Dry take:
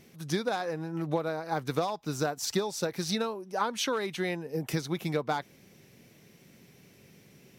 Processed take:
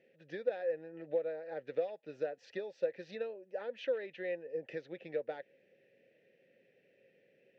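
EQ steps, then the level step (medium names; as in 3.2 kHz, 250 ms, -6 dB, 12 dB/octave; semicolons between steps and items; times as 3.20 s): vowel filter e; distance through air 180 m; +3.0 dB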